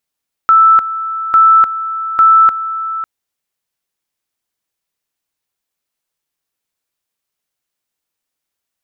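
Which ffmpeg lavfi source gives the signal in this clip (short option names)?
-f lavfi -i "aevalsrc='pow(10,(-4-13*gte(mod(t,0.85),0.3))/20)*sin(2*PI*1320*t)':d=2.55:s=44100"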